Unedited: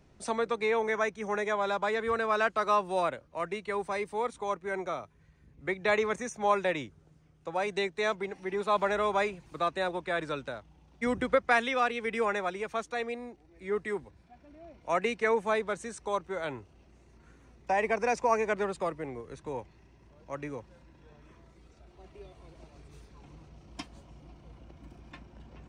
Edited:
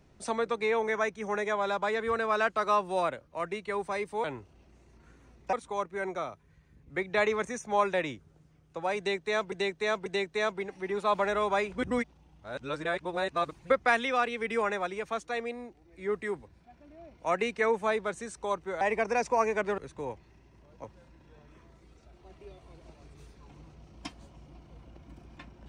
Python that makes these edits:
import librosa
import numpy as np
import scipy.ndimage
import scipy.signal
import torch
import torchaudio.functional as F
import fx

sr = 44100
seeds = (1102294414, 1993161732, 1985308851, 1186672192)

y = fx.edit(x, sr, fx.repeat(start_s=7.69, length_s=0.54, count=3),
    fx.reverse_span(start_s=9.35, length_s=1.98),
    fx.move(start_s=16.44, length_s=1.29, to_s=4.24),
    fx.cut(start_s=18.7, length_s=0.56),
    fx.cut(start_s=20.32, length_s=0.26), tone=tone)